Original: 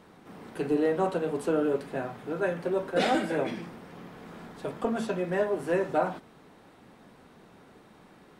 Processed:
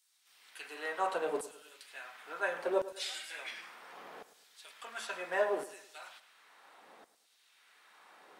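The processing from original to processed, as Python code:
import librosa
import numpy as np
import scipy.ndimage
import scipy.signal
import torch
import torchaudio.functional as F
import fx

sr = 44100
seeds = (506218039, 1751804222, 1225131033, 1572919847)

p1 = fx.filter_lfo_highpass(x, sr, shape='saw_down', hz=0.71, low_hz=470.0, high_hz=7200.0, q=0.97)
y = p1 + fx.echo_feedback(p1, sr, ms=106, feedback_pct=39, wet_db=-15.0, dry=0)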